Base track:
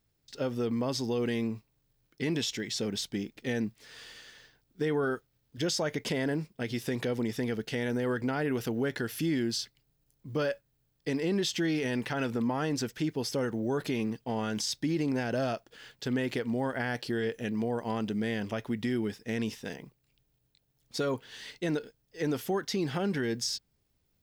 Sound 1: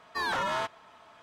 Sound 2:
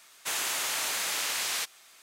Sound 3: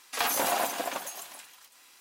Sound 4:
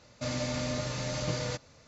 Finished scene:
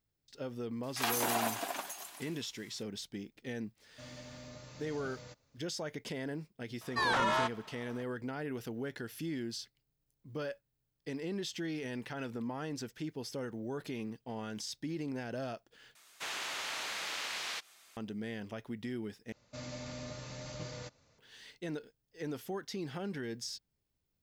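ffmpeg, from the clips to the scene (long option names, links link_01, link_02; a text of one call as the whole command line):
ffmpeg -i bed.wav -i cue0.wav -i cue1.wav -i cue2.wav -i cue3.wav -filter_complex "[4:a]asplit=2[link_01][link_02];[0:a]volume=-9dB[link_03];[3:a]bandreject=frequency=520:width=5.9[link_04];[1:a]lowpass=frequency=11000:width=0.5412,lowpass=frequency=11000:width=1.3066[link_05];[2:a]acrossover=split=5600[link_06][link_07];[link_07]acompressor=threshold=-50dB:ratio=4:attack=1:release=60[link_08];[link_06][link_08]amix=inputs=2:normalize=0[link_09];[link_03]asplit=3[link_10][link_11][link_12];[link_10]atrim=end=15.954[link_13];[link_09]atrim=end=2.02,asetpts=PTS-STARTPTS,volume=-5.5dB[link_14];[link_11]atrim=start=17.966:end=19.324[link_15];[link_02]atrim=end=1.87,asetpts=PTS-STARTPTS,volume=-11dB[link_16];[link_12]atrim=start=21.186[link_17];[link_04]atrim=end=2,asetpts=PTS-STARTPTS,volume=-5dB,afade=type=in:duration=0.004:curve=hsin,afade=type=out:start_time=1.996:duration=0.004:curve=hsin,adelay=830[link_18];[link_01]atrim=end=1.87,asetpts=PTS-STARTPTS,volume=-17dB,afade=type=in:duration=0.004:curve=hsin,afade=type=out:start_time=1.866:duration=0.004:curve=hsin,adelay=166257S[link_19];[link_05]atrim=end=1.22,asetpts=PTS-STARTPTS,afade=type=in:duration=0.004:curve=hsin,afade=type=out:start_time=1.216:duration=0.004:curve=hsin,adelay=6810[link_20];[link_13][link_14]acrossfade=duration=0.004:curve1=hsin:curve2=hsin[link_21];[link_21][link_15]acrossfade=duration=0.004:curve1=hsin:curve2=hsin[link_22];[link_22][link_16]acrossfade=duration=0.004:curve1=hsin:curve2=hsin[link_23];[link_23][link_17]acrossfade=duration=0.004:curve1=hsin:curve2=hsin[link_24];[link_24][link_18][link_19][link_20]amix=inputs=4:normalize=0" out.wav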